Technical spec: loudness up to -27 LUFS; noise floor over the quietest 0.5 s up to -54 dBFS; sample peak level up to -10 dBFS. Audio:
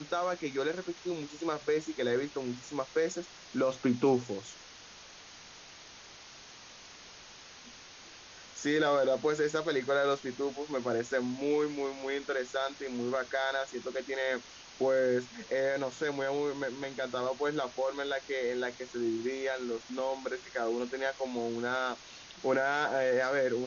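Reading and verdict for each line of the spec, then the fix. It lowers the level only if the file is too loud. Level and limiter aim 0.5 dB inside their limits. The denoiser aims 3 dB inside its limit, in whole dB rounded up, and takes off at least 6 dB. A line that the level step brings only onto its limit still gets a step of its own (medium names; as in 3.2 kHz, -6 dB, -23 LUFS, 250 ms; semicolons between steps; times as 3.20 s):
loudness -32.5 LUFS: pass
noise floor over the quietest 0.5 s -52 dBFS: fail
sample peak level -16.0 dBFS: pass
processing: noise reduction 6 dB, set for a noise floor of -52 dBFS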